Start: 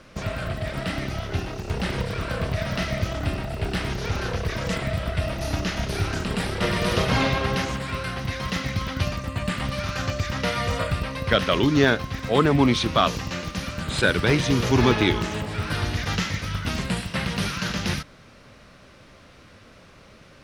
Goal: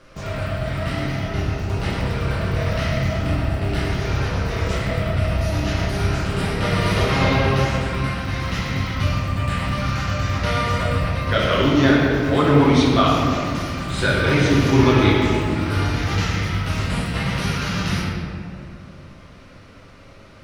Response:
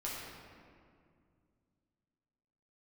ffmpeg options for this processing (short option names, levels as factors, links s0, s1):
-filter_complex "[1:a]atrim=start_sample=2205[s0];[0:a][s0]afir=irnorm=-1:irlink=0,volume=1.12"